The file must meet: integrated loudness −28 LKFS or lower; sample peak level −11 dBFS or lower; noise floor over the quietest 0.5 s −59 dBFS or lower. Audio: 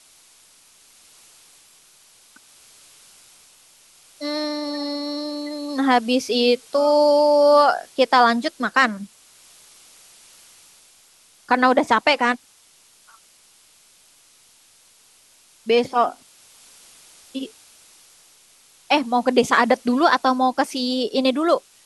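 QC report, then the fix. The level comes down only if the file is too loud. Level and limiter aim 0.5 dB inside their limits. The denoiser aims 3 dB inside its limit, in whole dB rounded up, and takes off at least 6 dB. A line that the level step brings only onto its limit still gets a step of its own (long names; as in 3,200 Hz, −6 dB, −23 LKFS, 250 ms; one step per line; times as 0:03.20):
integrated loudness −19.0 LKFS: out of spec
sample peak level −3.0 dBFS: out of spec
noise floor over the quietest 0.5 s −54 dBFS: out of spec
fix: level −9.5 dB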